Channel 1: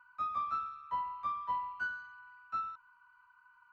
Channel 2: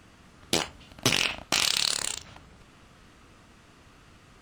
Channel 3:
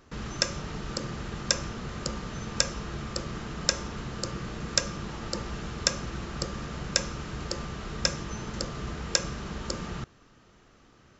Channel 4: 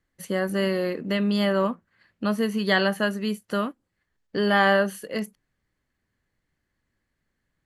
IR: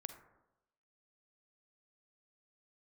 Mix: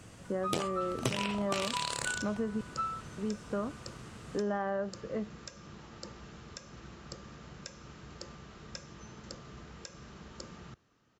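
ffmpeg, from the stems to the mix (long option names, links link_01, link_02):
-filter_complex "[0:a]adelay=250,volume=2.5dB[link_01];[1:a]acrossover=split=3300[link_02][link_03];[link_03]acompressor=threshold=-35dB:ratio=4:attack=1:release=60[link_04];[link_02][link_04]amix=inputs=2:normalize=0,equalizer=frequency=125:width_type=o:width=1:gain=10,equalizer=frequency=500:width_type=o:width=1:gain=6,equalizer=frequency=8000:width_type=o:width=1:gain=10,volume=-2dB[link_05];[2:a]highpass=62,alimiter=limit=-11.5dB:level=0:latency=1:release=205,adelay=700,volume=-12.5dB[link_06];[3:a]highpass=180,lowpass=1000,volume=-4.5dB,asplit=3[link_07][link_08][link_09];[link_07]atrim=end=2.61,asetpts=PTS-STARTPTS,afade=type=out:start_time=2.606:duration=0.004:curve=hsin[link_10];[link_08]atrim=start=2.61:end=3.18,asetpts=PTS-STARTPTS,volume=0[link_11];[link_09]atrim=start=3.18,asetpts=PTS-STARTPTS,afade=type=in:duration=0.004:curve=hsin[link_12];[link_10][link_11][link_12]concat=n=3:v=0:a=1[link_13];[link_01][link_05][link_06][link_13]amix=inputs=4:normalize=0,acompressor=threshold=-29dB:ratio=6"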